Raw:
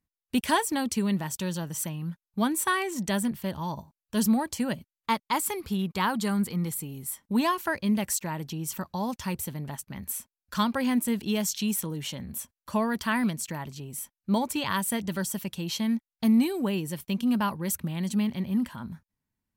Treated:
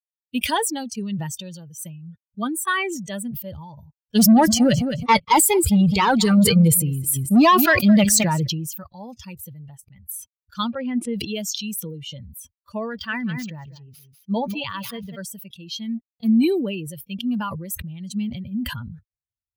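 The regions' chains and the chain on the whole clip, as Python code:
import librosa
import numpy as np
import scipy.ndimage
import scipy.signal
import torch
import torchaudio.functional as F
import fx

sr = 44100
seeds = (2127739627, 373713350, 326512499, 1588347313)

y = fx.chain(x, sr, fx.high_shelf(hz=9500.0, db=-5.5),
    fx.leveller(passes=3),
    fx.echo_feedback(ms=213, feedback_pct=17, wet_db=-11), at=(4.15, 8.47))
y = fx.chain(y, sr, fx.lowpass(hz=3500.0, slope=12),
    fx.peak_eq(hz=340.0, db=6.5, octaves=0.27), at=(10.74, 11.14))
y = fx.chain(y, sr, fx.median_filter(points=5),
    fx.echo_single(ms=192, db=-10.0), at=(12.89, 15.17))
y = fx.bin_expand(y, sr, power=2.0)
y = scipy.signal.sosfilt(scipy.signal.butter(2, 41.0, 'highpass', fs=sr, output='sos'), y)
y = fx.sustainer(y, sr, db_per_s=38.0)
y = F.gain(torch.from_numpy(y), 7.5).numpy()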